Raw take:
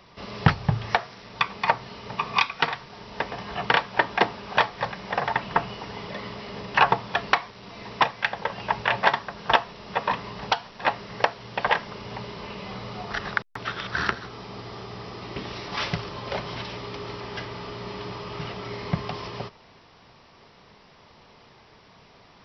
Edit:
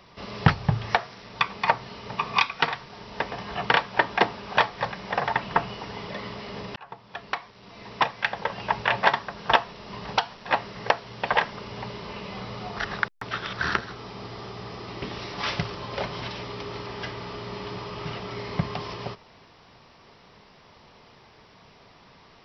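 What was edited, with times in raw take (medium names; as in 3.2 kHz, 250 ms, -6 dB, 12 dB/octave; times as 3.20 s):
6.76–8.36 s: fade in
9.93–10.27 s: delete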